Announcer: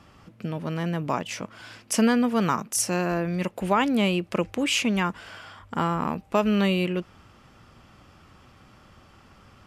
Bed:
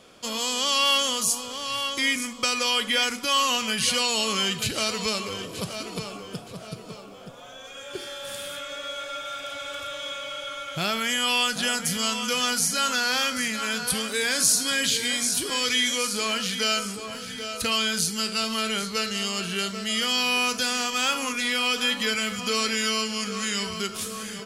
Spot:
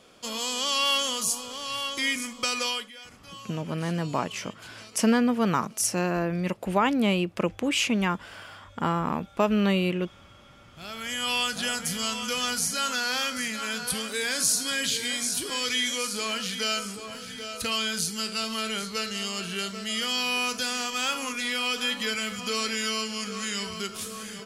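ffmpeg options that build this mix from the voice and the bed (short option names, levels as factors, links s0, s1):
-filter_complex "[0:a]adelay=3050,volume=0.891[s0];[1:a]volume=6.31,afade=t=out:st=2.64:d=0.27:silence=0.105925,afade=t=in:st=10.74:d=0.58:silence=0.112202[s1];[s0][s1]amix=inputs=2:normalize=0"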